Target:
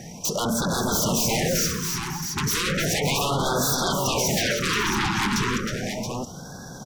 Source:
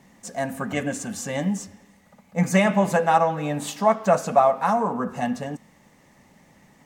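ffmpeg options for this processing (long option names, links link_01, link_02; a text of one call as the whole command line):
ffmpeg -i in.wav -filter_complex "[0:a]equalizer=frequency=6700:width=7.8:gain=13,asetrate=38170,aresample=44100,atempo=1.15535,acompressor=threshold=-25dB:ratio=3,aeval=exprs='0.158*sin(PI/2*6.31*val(0)/0.158)':channel_layout=same,asplit=2[link_01][link_02];[link_02]aecho=0:1:314|549|579|666|674:0.398|0.211|0.126|0.133|0.473[link_03];[link_01][link_03]amix=inputs=2:normalize=0,afftfilt=real='re*(1-between(b*sr/1024,540*pow(2400/540,0.5+0.5*sin(2*PI*0.34*pts/sr))/1.41,540*pow(2400/540,0.5+0.5*sin(2*PI*0.34*pts/sr))*1.41))':imag='im*(1-between(b*sr/1024,540*pow(2400/540,0.5+0.5*sin(2*PI*0.34*pts/sr))/1.41,540*pow(2400/540,0.5+0.5*sin(2*PI*0.34*pts/sr))*1.41))':win_size=1024:overlap=0.75,volume=-5dB" out.wav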